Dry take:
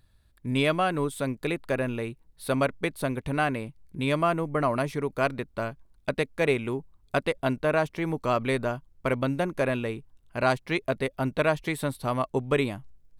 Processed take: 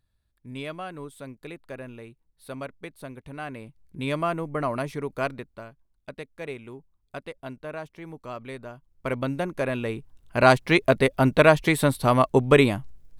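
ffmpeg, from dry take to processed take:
-af "volume=17.5dB,afade=t=in:st=3.39:d=0.66:silence=0.354813,afade=t=out:st=5.23:d=0.41:silence=0.334965,afade=t=in:st=8.75:d=0.42:silence=0.298538,afade=t=in:st=9.71:d=0.85:silence=0.354813"

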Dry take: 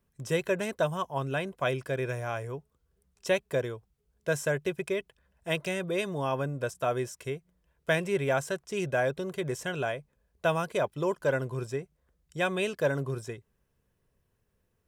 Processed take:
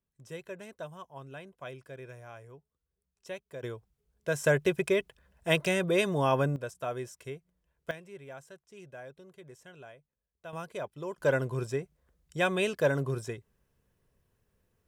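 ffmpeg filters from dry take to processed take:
-af "asetnsamples=n=441:p=0,asendcmd='3.63 volume volume -2dB;4.44 volume volume 4dB;6.56 volume volume -6dB;7.91 volume volume -18.5dB;10.53 volume volume -9dB;11.18 volume volume 1dB',volume=-14dB"

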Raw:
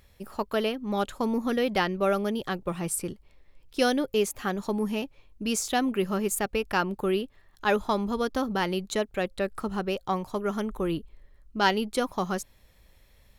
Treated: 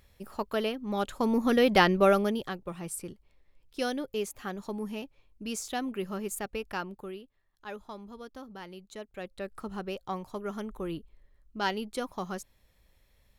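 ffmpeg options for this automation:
-af "volume=15dB,afade=t=in:st=0.99:d=0.91:silence=0.398107,afade=t=out:st=1.9:d=0.67:silence=0.237137,afade=t=out:st=6.65:d=0.54:silence=0.334965,afade=t=in:st=8.89:d=0.81:silence=0.316228"

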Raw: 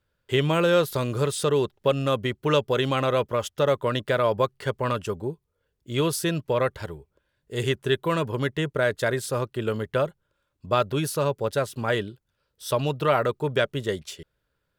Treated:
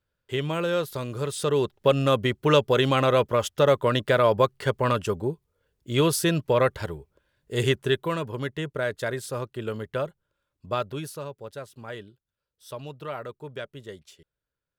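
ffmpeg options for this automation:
-af "volume=2.5dB,afade=t=in:st=1.2:d=0.76:silence=0.398107,afade=t=out:st=7.66:d=0.53:silence=0.446684,afade=t=out:st=10.68:d=0.62:silence=0.375837"

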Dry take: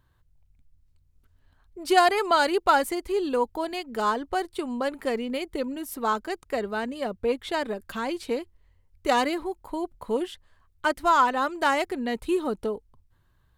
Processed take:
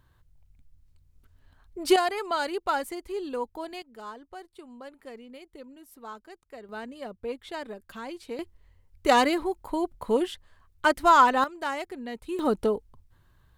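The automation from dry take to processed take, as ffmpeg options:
-af "asetnsamples=n=441:p=0,asendcmd='1.96 volume volume -7dB;3.82 volume volume -16dB;6.69 volume volume -8.5dB;8.39 volume volume 2.5dB;11.44 volume volume -8dB;12.39 volume volume 4dB',volume=3dB"

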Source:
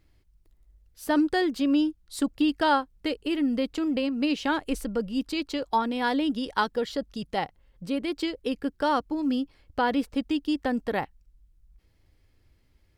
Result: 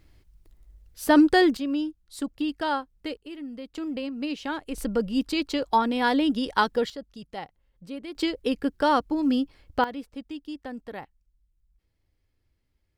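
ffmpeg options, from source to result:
-af "asetnsamples=n=441:p=0,asendcmd='1.57 volume volume -4.5dB;3.17 volume volume -12dB;3.75 volume volume -5dB;4.78 volume volume 3dB;6.9 volume volume -8dB;8.15 volume volume 3dB;9.84 volume volume -10dB',volume=6dB"

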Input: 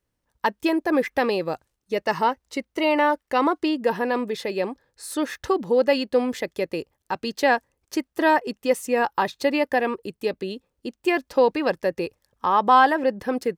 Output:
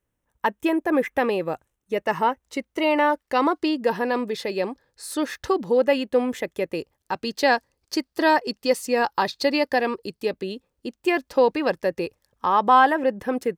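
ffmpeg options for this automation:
-af "asetnsamples=n=441:p=0,asendcmd='2.43 equalizer g -3.5;3.21 equalizer g 2.5;5.77 equalizer g -8;6.75 equalizer g 1.5;7.4 equalizer g 10;10.23 equalizer g 0;12.69 equalizer g -7',equalizer=f=4.6k:t=o:w=0.45:g=-13"

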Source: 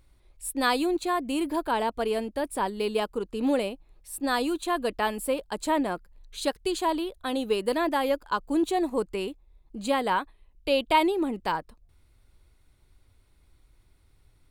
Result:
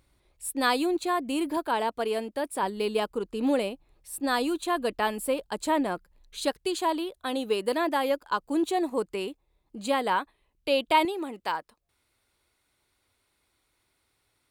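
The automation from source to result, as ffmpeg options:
-af "asetnsamples=n=441:p=0,asendcmd='1.57 highpass f 250;2.63 highpass f 66;6.58 highpass f 200;11.05 highpass f 650',highpass=f=110:p=1"

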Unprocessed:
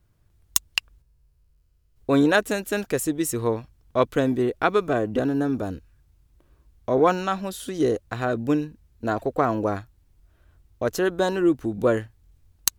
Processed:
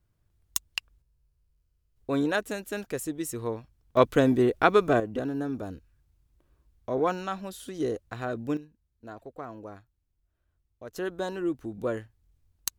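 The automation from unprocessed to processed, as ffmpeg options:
-af "asetnsamples=n=441:p=0,asendcmd='3.97 volume volume 0.5dB;5 volume volume -7.5dB;8.57 volume volume -18dB;10.96 volume volume -9.5dB',volume=-8dB"

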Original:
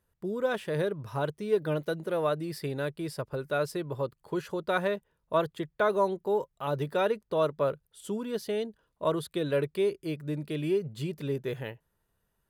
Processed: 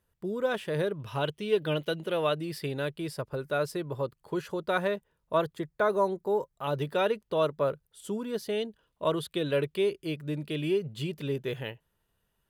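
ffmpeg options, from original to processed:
-af "asetnsamples=n=441:p=0,asendcmd='1 equalizer g 14;2.35 equalizer g 7;3.08 equalizer g 1;5.53 equalizer g -6;6.64 equalizer g 5.5;7.47 equalizer g -0.5;8.52 equalizer g 7',equalizer=f=3k:t=o:w=0.6:g=3"

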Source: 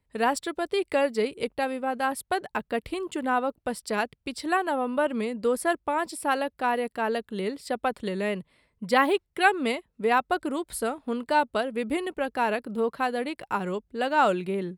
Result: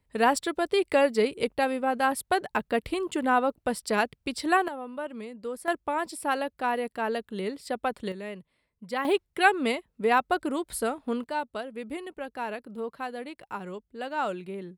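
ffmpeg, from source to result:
-af "asetnsamples=n=441:p=0,asendcmd='4.68 volume volume -10dB;5.68 volume volume -2dB;8.12 volume volume -9.5dB;9.05 volume volume 0dB;11.24 volume volume -8dB',volume=2dB"

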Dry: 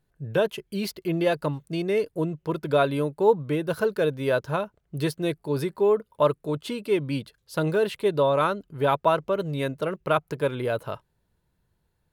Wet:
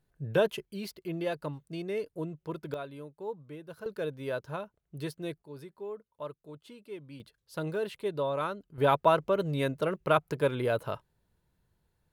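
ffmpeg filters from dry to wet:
-af "asetnsamples=n=441:p=0,asendcmd='0.65 volume volume -9.5dB;2.74 volume volume -18.5dB;3.86 volume volume -10.5dB;5.42 volume volume -19dB;7.2 volume volume -9.5dB;8.78 volume volume -2dB',volume=-2.5dB"

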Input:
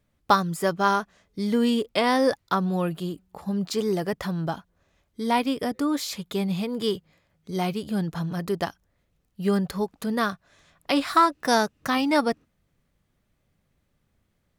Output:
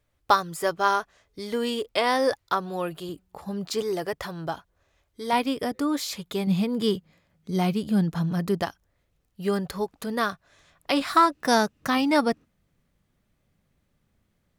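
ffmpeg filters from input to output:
-af "asetnsamples=n=441:p=0,asendcmd='3.09 equalizer g -5.5;3.82 equalizer g -12.5;5.33 equalizer g -3;6.47 equalizer g 5;8.62 equalizer g -5;11.01 equalizer g 2',equalizer=f=200:t=o:w=0.74:g=-13"

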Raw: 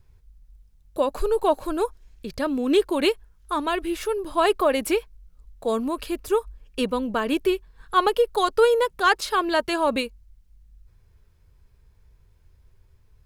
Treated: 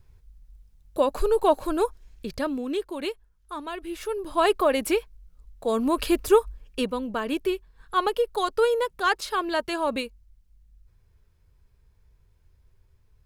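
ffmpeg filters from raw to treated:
-af "volume=16.5dB,afade=t=out:st=2.26:d=0.48:silence=0.316228,afade=t=in:st=3.78:d=0.63:silence=0.375837,afade=t=in:st=5.73:d=0.34:silence=0.421697,afade=t=out:st=6.07:d=0.85:silence=0.298538"

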